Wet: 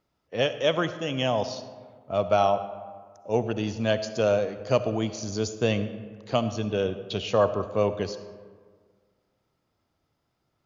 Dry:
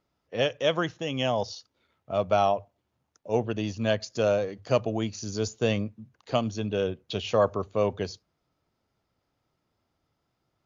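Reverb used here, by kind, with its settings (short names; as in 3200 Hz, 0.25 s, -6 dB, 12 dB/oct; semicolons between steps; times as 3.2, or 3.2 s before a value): digital reverb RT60 1.7 s, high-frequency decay 0.5×, pre-delay 25 ms, DRR 11.5 dB; gain +1 dB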